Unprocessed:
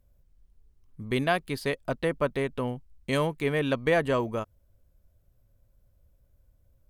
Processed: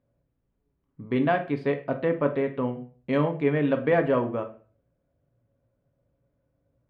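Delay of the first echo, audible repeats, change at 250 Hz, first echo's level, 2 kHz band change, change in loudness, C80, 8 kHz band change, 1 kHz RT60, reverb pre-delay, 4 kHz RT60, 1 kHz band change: no echo audible, no echo audible, +5.0 dB, no echo audible, −1.5 dB, +2.5 dB, 17.0 dB, below −25 dB, 0.40 s, 3 ms, 0.30 s, +1.5 dB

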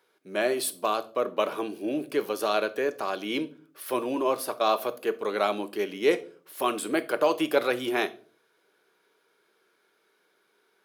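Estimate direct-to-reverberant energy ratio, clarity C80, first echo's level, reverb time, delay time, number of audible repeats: 11.0 dB, 23.5 dB, no echo audible, 0.45 s, no echo audible, no echo audible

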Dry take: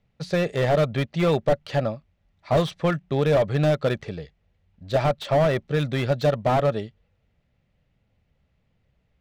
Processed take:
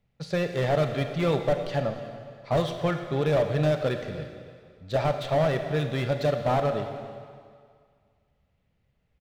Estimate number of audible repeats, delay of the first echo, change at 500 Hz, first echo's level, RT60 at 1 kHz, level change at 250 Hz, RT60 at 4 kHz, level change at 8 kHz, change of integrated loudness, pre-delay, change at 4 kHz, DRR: 1, 291 ms, −3.0 dB, −18.5 dB, 2.1 s, −3.5 dB, 1.9 s, can't be measured, −3.5 dB, 30 ms, −3.0 dB, 6.0 dB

